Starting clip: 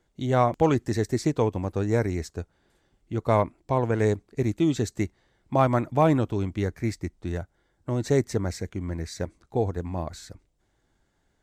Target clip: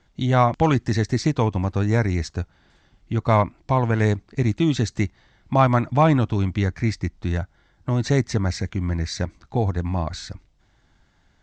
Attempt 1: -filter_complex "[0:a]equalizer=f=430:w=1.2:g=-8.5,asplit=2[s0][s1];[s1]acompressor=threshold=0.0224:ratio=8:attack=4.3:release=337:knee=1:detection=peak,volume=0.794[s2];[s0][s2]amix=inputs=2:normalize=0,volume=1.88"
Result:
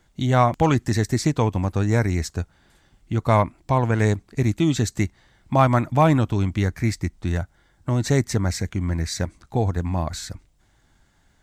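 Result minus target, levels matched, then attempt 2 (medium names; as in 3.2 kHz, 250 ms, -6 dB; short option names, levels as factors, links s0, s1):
8 kHz band +5.0 dB
-filter_complex "[0:a]lowpass=f=6100:w=0.5412,lowpass=f=6100:w=1.3066,equalizer=f=430:w=1.2:g=-8.5,asplit=2[s0][s1];[s1]acompressor=threshold=0.0224:ratio=8:attack=4.3:release=337:knee=1:detection=peak,volume=0.794[s2];[s0][s2]amix=inputs=2:normalize=0,volume=1.88"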